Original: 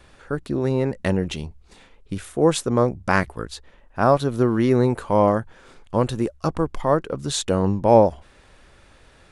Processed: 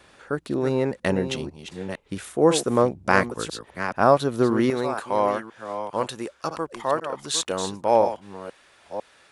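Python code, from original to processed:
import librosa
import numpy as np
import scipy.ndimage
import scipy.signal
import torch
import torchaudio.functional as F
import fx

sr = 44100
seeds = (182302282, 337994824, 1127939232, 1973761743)

y = fx.reverse_delay(x, sr, ms=500, wet_db=-9.0)
y = fx.highpass(y, sr, hz=fx.steps((0.0, 240.0), (4.7, 950.0)), slope=6)
y = y * librosa.db_to_amplitude(1.0)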